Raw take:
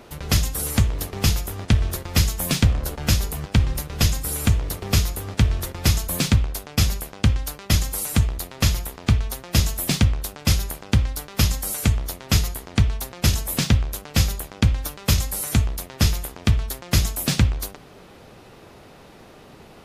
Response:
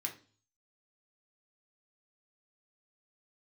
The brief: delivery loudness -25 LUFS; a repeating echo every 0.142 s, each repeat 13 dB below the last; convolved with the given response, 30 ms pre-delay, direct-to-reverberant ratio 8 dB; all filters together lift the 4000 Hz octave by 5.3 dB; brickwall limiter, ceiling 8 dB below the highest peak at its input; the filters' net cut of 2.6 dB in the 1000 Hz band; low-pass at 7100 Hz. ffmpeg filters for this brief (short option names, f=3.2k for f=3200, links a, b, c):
-filter_complex "[0:a]lowpass=7.1k,equalizer=f=1k:t=o:g=-4,equalizer=f=4k:t=o:g=7.5,alimiter=limit=-11dB:level=0:latency=1,aecho=1:1:142|284|426:0.224|0.0493|0.0108,asplit=2[a][b];[1:a]atrim=start_sample=2205,adelay=30[c];[b][c]afir=irnorm=-1:irlink=0,volume=-8dB[d];[a][d]amix=inputs=2:normalize=0,volume=-1dB"